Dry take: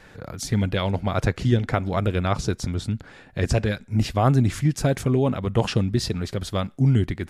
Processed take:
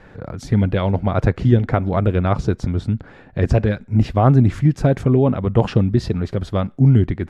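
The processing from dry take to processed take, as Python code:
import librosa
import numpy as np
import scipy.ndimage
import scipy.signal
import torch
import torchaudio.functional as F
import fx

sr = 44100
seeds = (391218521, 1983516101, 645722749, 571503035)

y = fx.lowpass(x, sr, hz=1100.0, slope=6)
y = F.gain(torch.from_numpy(y), 6.0).numpy()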